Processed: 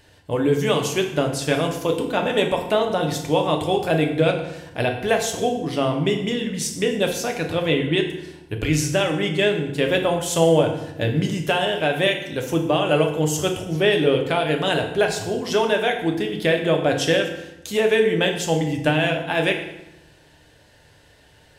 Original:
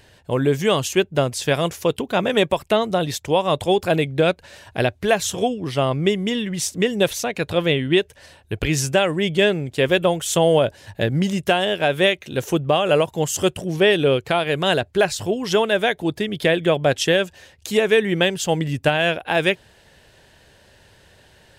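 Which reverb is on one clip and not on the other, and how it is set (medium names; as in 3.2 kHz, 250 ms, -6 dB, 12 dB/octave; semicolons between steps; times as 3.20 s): FDN reverb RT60 0.91 s, low-frequency decay 1.3×, high-frequency decay 0.8×, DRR 2 dB; trim -3.5 dB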